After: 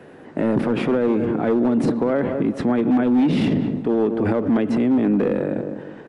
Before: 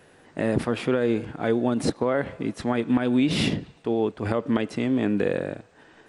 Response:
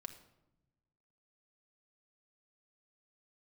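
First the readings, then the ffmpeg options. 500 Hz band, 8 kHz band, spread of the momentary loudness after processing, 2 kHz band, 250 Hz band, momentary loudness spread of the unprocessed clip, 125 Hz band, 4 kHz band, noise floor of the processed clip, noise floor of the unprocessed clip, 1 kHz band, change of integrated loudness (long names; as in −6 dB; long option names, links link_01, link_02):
+4.0 dB, can't be measured, 5 LU, −0.5 dB, +6.5 dB, 8 LU, +3.5 dB, −5.0 dB, −42 dBFS, −55 dBFS, +3.5 dB, +5.0 dB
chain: -filter_complex "[0:a]equalizer=frequency=220:width_type=o:width=2.2:gain=11,acrossover=split=280|2800[link_01][link_02][link_03];[link_02]acontrast=52[link_04];[link_01][link_04][link_03]amix=inputs=3:normalize=0,asoftclip=type=hard:threshold=-6dB,highshelf=frequency=4700:gain=-7,asplit=2[link_05][link_06];[link_06]adelay=201,lowpass=frequency=970:poles=1,volume=-11.5dB,asplit=2[link_07][link_08];[link_08]adelay=201,lowpass=frequency=970:poles=1,volume=0.39,asplit=2[link_09][link_10];[link_10]adelay=201,lowpass=frequency=970:poles=1,volume=0.39,asplit=2[link_11][link_12];[link_12]adelay=201,lowpass=frequency=970:poles=1,volume=0.39[link_13];[link_05][link_07][link_09][link_11][link_13]amix=inputs=5:normalize=0,alimiter=limit=-13.5dB:level=0:latency=1:release=45,volume=1dB"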